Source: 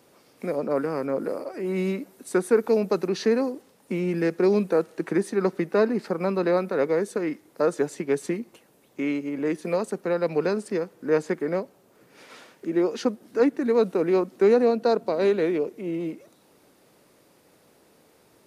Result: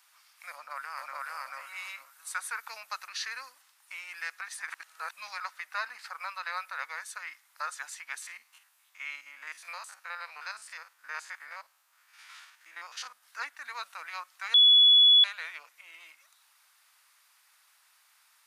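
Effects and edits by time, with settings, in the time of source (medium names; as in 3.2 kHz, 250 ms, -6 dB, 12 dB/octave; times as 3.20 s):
0.53–1.21 s: echo throw 440 ms, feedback 25%, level 0 dB
3.08–3.55 s: peaking EQ 790 Hz -8 dB 0.48 oct
4.41–5.40 s: reverse
8.22–13.23 s: spectrogram pixelated in time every 50 ms
14.54–15.24 s: bleep 3.4 kHz -15 dBFS
whole clip: inverse Chebyshev high-pass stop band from 430 Hz, stop band 50 dB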